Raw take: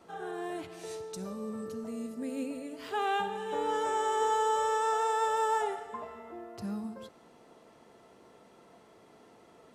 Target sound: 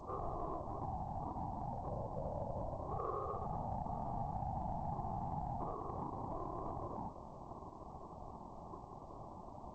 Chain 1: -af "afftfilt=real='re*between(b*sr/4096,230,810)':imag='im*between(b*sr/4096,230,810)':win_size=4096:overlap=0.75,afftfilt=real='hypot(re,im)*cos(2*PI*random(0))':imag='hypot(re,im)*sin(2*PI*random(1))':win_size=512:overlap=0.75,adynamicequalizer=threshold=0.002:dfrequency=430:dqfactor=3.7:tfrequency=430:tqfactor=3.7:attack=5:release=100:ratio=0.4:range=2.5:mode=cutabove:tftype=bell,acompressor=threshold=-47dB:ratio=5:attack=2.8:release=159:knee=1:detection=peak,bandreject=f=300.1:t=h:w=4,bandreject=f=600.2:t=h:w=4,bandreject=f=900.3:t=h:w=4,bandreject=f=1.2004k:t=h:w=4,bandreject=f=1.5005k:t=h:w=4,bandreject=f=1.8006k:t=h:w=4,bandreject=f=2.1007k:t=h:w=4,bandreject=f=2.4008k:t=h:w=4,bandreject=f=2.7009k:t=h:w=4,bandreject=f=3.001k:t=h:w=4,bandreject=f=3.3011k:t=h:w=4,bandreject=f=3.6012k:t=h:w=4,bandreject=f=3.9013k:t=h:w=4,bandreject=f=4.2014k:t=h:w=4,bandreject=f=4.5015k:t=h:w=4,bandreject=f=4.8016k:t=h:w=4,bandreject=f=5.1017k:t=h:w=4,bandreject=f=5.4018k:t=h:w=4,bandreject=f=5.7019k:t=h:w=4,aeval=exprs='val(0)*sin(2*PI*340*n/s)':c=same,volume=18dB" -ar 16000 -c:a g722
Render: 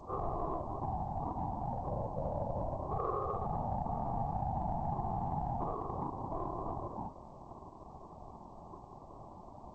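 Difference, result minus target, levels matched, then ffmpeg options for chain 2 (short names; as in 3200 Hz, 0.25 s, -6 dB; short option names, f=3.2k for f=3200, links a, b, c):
compressor: peak gain reduction -5 dB
-af "afftfilt=real='re*between(b*sr/4096,230,810)':imag='im*between(b*sr/4096,230,810)':win_size=4096:overlap=0.75,afftfilt=real='hypot(re,im)*cos(2*PI*random(0))':imag='hypot(re,im)*sin(2*PI*random(1))':win_size=512:overlap=0.75,adynamicequalizer=threshold=0.002:dfrequency=430:dqfactor=3.7:tfrequency=430:tqfactor=3.7:attack=5:release=100:ratio=0.4:range=2.5:mode=cutabove:tftype=bell,acompressor=threshold=-53.5dB:ratio=5:attack=2.8:release=159:knee=1:detection=peak,bandreject=f=300.1:t=h:w=4,bandreject=f=600.2:t=h:w=4,bandreject=f=900.3:t=h:w=4,bandreject=f=1.2004k:t=h:w=4,bandreject=f=1.5005k:t=h:w=4,bandreject=f=1.8006k:t=h:w=4,bandreject=f=2.1007k:t=h:w=4,bandreject=f=2.4008k:t=h:w=4,bandreject=f=2.7009k:t=h:w=4,bandreject=f=3.001k:t=h:w=4,bandreject=f=3.3011k:t=h:w=4,bandreject=f=3.6012k:t=h:w=4,bandreject=f=3.9013k:t=h:w=4,bandreject=f=4.2014k:t=h:w=4,bandreject=f=4.5015k:t=h:w=4,bandreject=f=4.8016k:t=h:w=4,bandreject=f=5.1017k:t=h:w=4,bandreject=f=5.4018k:t=h:w=4,bandreject=f=5.7019k:t=h:w=4,aeval=exprs='val(0)*sin(2*PI*340*n/s)':c=same,volume=18dB" -ar 16000 -c:a g722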